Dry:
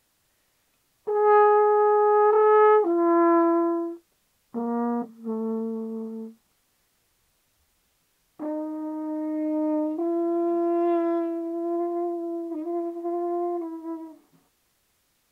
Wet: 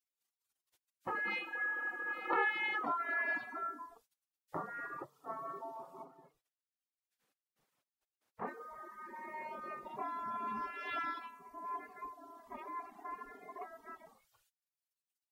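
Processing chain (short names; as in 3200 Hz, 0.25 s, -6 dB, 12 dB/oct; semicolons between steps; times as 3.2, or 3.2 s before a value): spectral noise reduction 11 dB; spectral gate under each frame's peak -20 dB weak; reverb removal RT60 1.6 s; 6.03–8.46 high shelf 2000 Hz -> 2200 Hz -11 dB; gain +8 dB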